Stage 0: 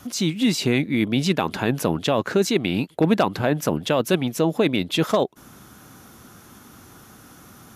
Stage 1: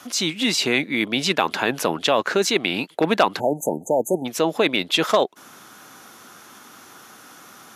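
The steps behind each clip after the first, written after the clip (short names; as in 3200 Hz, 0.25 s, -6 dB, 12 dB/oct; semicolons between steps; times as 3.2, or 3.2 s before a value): spectral delete 3.4–4.25, 930–6200 Hz; weighting filter A; gain +4.5 dB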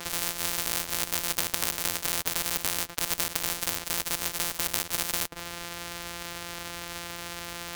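sample sorter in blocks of 256 samples; spectral compressor 10:1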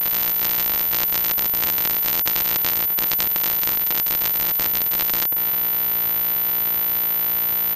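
cycle switcher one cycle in 3, muted; speakerphone echo 0.23 s, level -14 dB; pulse-width modulation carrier 14000 Hz; gain +6 dB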